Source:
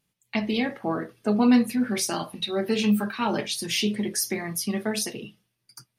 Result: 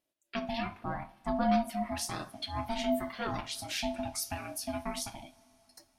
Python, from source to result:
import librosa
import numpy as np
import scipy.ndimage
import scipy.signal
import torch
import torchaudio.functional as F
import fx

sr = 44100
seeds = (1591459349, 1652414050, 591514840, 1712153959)

y = x * np.sin(2.0 * np.pi * 460.0 * np.arange(len(x)) / sr)
y = fx.rev_double_slope(y, sr, seeds[0], early_s=0.4, late_s=4.6, knee_db=-18, drr_db=14.5)
y = F.gain(torch.from_numpy(y), -6.5).numpy()